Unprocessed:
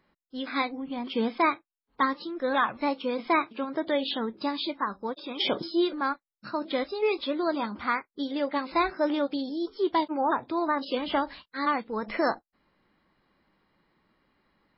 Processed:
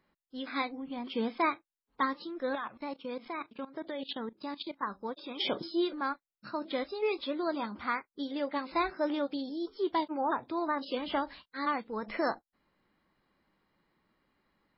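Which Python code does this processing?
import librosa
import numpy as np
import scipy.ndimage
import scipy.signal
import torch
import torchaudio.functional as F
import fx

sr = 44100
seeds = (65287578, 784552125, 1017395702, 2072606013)

y = fx.level_steps(x, sr, step_db=16, at=(2.55, 4.83))
y = F.gain(torch.from_numpy(y), -5.0).numpy()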